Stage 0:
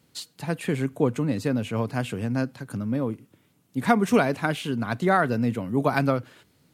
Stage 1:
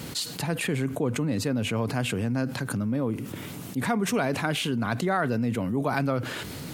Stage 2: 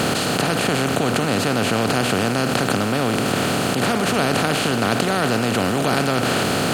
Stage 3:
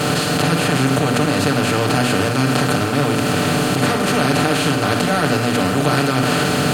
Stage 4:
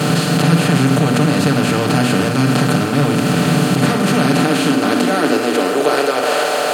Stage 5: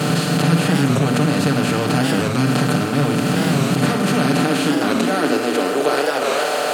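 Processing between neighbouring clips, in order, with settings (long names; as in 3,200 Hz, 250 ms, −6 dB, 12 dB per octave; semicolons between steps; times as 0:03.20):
envelope flattener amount 70%; level −8 dB
compressor on every frequency bin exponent 0.2; level −1 dB
convolution reverb, pre-delay 7 ms, DRR −3.5 dB; level −3 dB
high-pass filter sweep 160 Hz → 580 Hz, 0:04.08–0:06.49
wow of a warped record 45 rpm, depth 160 cents; level −3 dB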